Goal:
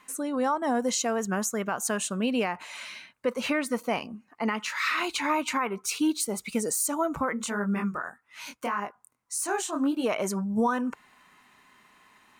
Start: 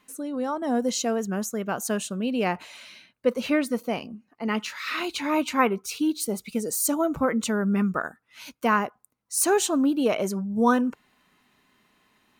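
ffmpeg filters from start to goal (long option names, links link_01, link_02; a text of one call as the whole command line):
ffmpeg -i in.wav -filter_complex "[0:a]equalizer=frequency=1000:width_type=o:width=1:gain=8,equalizer=frequency=2000:width_type=o:width=1:gain=6,equalizer=frequency=8000:width_type=o:width=1:gain=7,alimiter=limit=-17.5dB:level=0:latency=1:release=310,asplit=3[link_01][link_02][link_03];[link_01]afade=type=out:start_time=7.35:duration=0.02[link_04];[link_02]flanger=delay=19.5:depth=5.6:speed=1.7,afade=type=in:start_time=7.35:duration=0.02,afade=type=out:start_time=10.03:duration=0.02[link_05];[link_03]afade=type=in:start_time=10.03:duration=0.02[link_06];[link_04][link_05][link_06]amix=inputs=3:normalize=0" out.wav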